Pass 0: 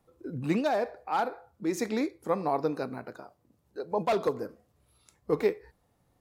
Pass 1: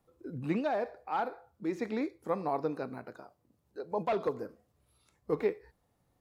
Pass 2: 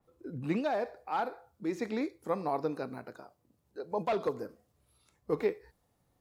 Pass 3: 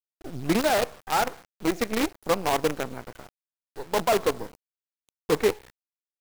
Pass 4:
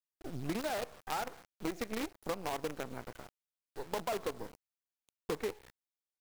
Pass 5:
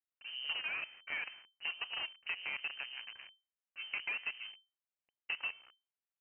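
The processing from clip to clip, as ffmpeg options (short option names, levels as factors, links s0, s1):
-filter_complex "[0:a]acrossover=split=3600[s0][s1];[s1]acompressor=threshold=0.00112:ratio=4:attack=1:release=60[s2];[s0][s2]amix=inputs=2:normalize=0,volume=0.631"
-af "adynamicequalizer=threshold=0.002:dfrequency=3500:dqfactor=0.7:tfrequency=3500:tqfactor=0.7:attack=5:release=100:ratio=0.375:range=2.5:mode=boostabove:tftype=highshelf"
-af "acrusher=bits=6:dc=4:mix=0:aa=0.000001,volume=2.37"
-af "acompressor=threshold=0.0398:ratio=6,volume=0.562"
-af "lowpass=f=2600:t=q:w=0.5098,lowpass=f=2600:t=q:w=0.6013,lowpass=f=2600:t=q:w=0.9,lowpass=f=2600:t=q:w=2.563,afreqshift=-3100,volume=0.708"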